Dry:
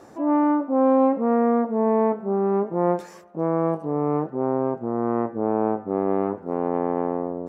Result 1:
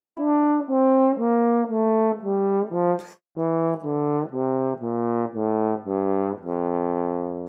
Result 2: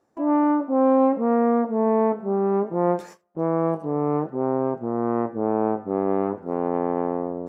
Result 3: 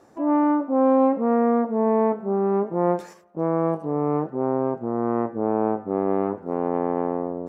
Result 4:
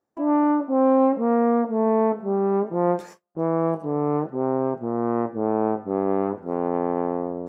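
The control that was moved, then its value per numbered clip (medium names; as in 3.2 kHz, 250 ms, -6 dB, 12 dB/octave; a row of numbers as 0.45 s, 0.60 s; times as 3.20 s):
gate, range: -54 dB, -22 dB, -7 dB, -34 dB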